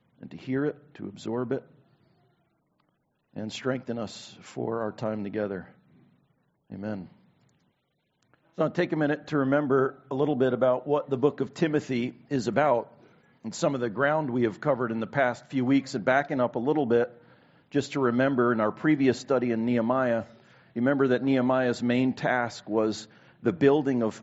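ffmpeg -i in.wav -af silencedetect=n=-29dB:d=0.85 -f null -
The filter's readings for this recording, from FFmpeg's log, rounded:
silence_start: 1.58
silence_end: 3.36 | silence_duration: 1.79
silence_start: 5.60
silence_end: 6.74 | silence_duration: 1.14
silence_start: 6.95
silence_end: 8.59 | silence_duration: 1.64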